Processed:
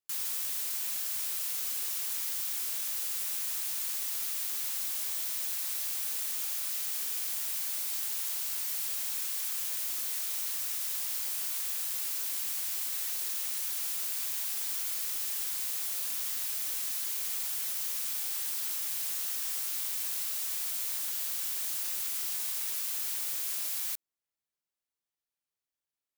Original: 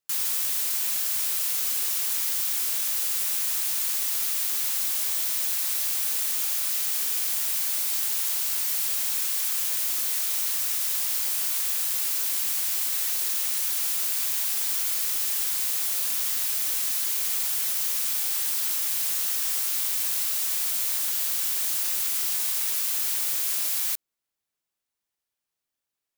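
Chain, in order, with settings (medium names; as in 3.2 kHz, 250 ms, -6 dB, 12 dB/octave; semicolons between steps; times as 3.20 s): 18.51–21.01 s: high-pass 140 Hz 24 dB/octave; trim -7.5 dB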